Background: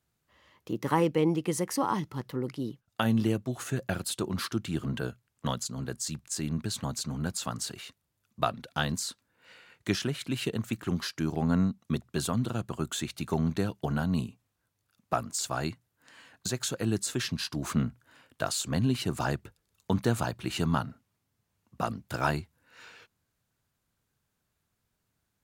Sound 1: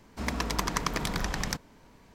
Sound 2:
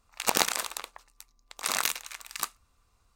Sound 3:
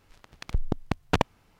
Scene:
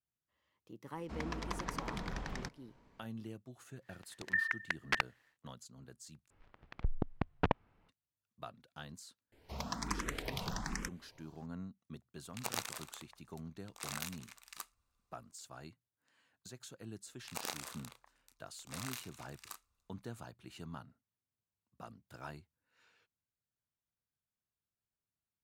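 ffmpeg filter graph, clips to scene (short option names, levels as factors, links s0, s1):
-filter_complex "[1:a]asplit=2[s0][s1];[3:a]asplit=2[s2][s3];[2:a]asplit=2[s4][s5];[0:a]volume=0.106[s6];[s0]aemphasis=mode=reproduction:type=50fm[s7];[s2]aeval=exprs='val(0)*sin(2*PI*1800*n/s)':c=same[s8];[s3]lowpass=2300[s9];[s1]asplit=2[s10][s11];[s11]afreqshift=1.2[s12];[s10][s12]amix=inputs=2:normalize=1[s13];[s5]asplit=2[s14][s15];[s15]adelay=32,volume=0.447[s16];[s14][s16]amix=inputs=2:normalize=0[s17];[s6]asplit=2[s18][s19];[s18]atrim=end=6.304[s20];[s9]atrim=end=1.59,asetpts=PTS-STARTPTS,volume=0.422[s21];[s19]atrim=start=7.886[s22];[s7]atrim=end=2.14,asetpts=PTS-STARTPTS,volume=0.316,afade=t=in:d=0.004:c=hsin,afade=t=out:st=2.136:d=0.004:c=hsin,adelay=920[s23];[s8]atrim=end=1.59,asetpts=PTS-STARTPTS,volume=0.473,afade=t=in:d=0.1,afade=t=out:st=1.49:d=0.1,adelay=3790[s24];[s13]atrim=end=2.14,asetpts=PTS-STARTPTS,volume=0.501,afade=t=in:d=0.004:c=hsin,afade=t=out:st=2.136:d=0.004:c=hsin,adelay=9320[s25];[s4]atrim=end=3.15,asetpts=PTS-STARTPTS,volume=0.188,afade=t=in:d=0.004:c=hsin,afade=t=out:st=3.146:d=0.004:c=hsin,adelay=12170[s26];[s17]atrim=end=3.15,asetpts=PTS-STARTPTS,volume=0.133,afade=t=in:d=0.004:c=hsin,afade=t=out:st=3.146:d=0.004:c=hsin,adelay=17080[s27];[s20][s21]acrossfade=d=0.004:c1=hsin:c2=hsin[s28];[s28][s22]acrossfade=d=0.004:c1=hsin:c2=hsin[s29];[s29][s23][s24][s25][s26][s27]amix=inputs=6:normalize=0"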